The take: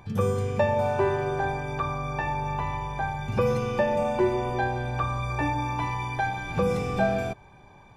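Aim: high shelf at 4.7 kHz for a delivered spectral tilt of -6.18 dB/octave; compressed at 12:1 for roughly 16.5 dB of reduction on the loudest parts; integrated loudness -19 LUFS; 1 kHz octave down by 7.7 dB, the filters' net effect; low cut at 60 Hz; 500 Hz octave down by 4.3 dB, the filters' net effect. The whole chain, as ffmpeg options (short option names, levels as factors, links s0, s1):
-af "highpass=60,equalizer=f=500:t=o:g=-3,equalizer=f=1000:t=o:g=-8.5,highshelf=f=4700:g=-6.5,acompressor=threshold=0.0112:ratio=12,volume=15.8"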